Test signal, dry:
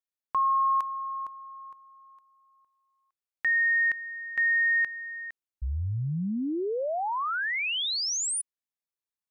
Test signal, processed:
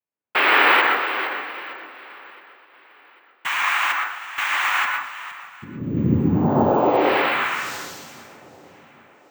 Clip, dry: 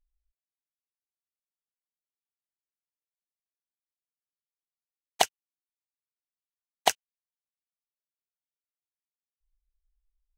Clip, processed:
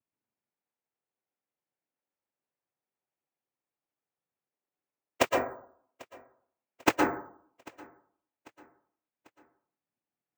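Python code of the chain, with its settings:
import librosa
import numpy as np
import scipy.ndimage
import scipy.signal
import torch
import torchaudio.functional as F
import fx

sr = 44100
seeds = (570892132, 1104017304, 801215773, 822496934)

p1 = scipy.signal.sosfilt(scipy.signal.butter(2, 1200.0, 'lowpass', fs=sr, output='sos'), x)
p2 = fx.fold_sine(p1, sr, drive_db=11, ceiling_db=-7.0)
p3 = p1 + F.gain(torch.from_numpy(p2), -4.0).numpy()
p4 = fx.noise_vocoder(p3, sr, seeds[0], bands=4)
p5 = p4 + fx.echo_feedback(p4, sr, ms=794, feedback_pct=47, wet_db=-23.5, dry=0)
p6 = fx.rev_plate(p5, sr, seeds[1], rt60_s=0.58, hf_ratio=0.25, predelay_ms=105, drr_db=0.5)
p7 = np.repeat(p6[::2], 2)[:len(p6)]
y = F.gain(torch.from_numpy(p7), -4.0).numpy()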